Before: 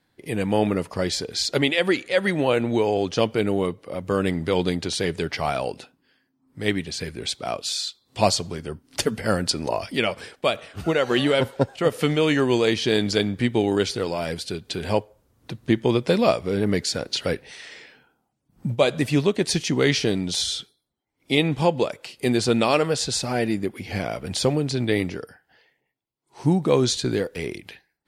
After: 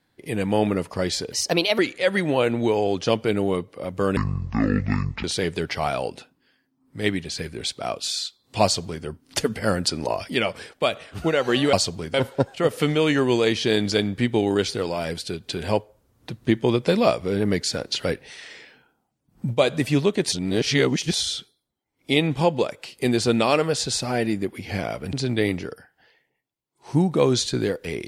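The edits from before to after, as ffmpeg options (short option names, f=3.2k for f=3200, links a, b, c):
-filter_complex "[0:a]asplit=10[a][b][c][d][e][f][g][h][i][j];[a]atrim=end=1.324[k];[b]atrim=start=1.32:end=1.89,asetpts=PTS-STARTPTS,asetrate=53802,aresample=44100,atrim=end_sample=20604,asetpts=PTS-STARTPTS[l];[c]atrim=start=1.886:end=4.274[m];[d]atrim=start=4.27:end=4.86,asetpts=PTS-STARTPTS,asetrate=24255,aresample=44100,atrim=end_sample=47307,asetpts=PTS-STARTPTS[n];[e]atrim=start=4.856:end=11.352[o];[f]atrim=start=8.248:end=8.662[p];[g]atrim=start=11.348:end=19.532[q];[h]atrim=start=19.528:end=20.342,asetpts=PTS-STARTPTS,areverse[r];[i]atrim=start=20.338:end=24.342[s];[j]atrim=start=24.638[t];[k][l]acrossfade=d=0.004:c1=hsin:c2=hsin[u];[u][m]acrossfade=d=0.004:c1=hsin:c2=hsin[v];[v][n]acrossfade=d=0.004:c1=hsin:c2=hsin[w];[w][o]acrossfade=d=0.004:c1=hsin:c2=hsin[x];[x][p]acrossfade=d=0.004:c1=hsin:c2=hsin[y];[y][q]acrossfade=d=0.004:c1=hsin:c2=hsin[z];[z][r]acrossfade=d=0.004:c1=hsin:c2=hsin[aa];[aa][s]acrossfade=d=0.004:c1=hsin:c2=hsin[ab];[ab][t]acrossfade=d=0.004:c1=hsin:c2=hsin"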